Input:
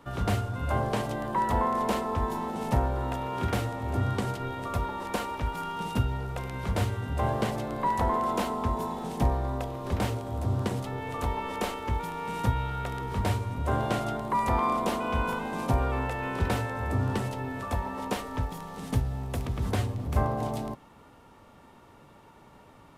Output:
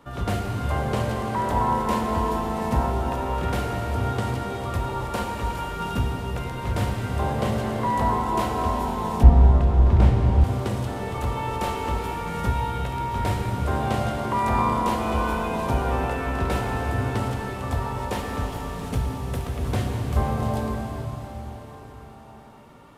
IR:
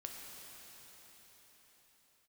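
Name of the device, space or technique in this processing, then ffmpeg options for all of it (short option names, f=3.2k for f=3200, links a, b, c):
cathedral: -filter_complex "[1:a]atrim=start_sample=2205[a];[0:a][a]afir=irnorm=-1:irlink=0,asettb=1/sr,asplit=3[b][c][d];[b]atrim=end=9.234[e];[c]atrim=start=9.23:end=10.44,asetpts=PTS-STARTPTS,afade=t=in:d=0.004:c=qsin,afade=t=out:st=1.206:d=0.004:c=qsin,aemphasis=mode=reproduction:type=bsi[f];[d]atrim=start=10.436[g];[e][f]acrossfade=d=0.004:c1=hsin:c2=qsin[h];[h][g]acrossfade=d=0.004:c1=qsin:c2=hsin,volume=6dB"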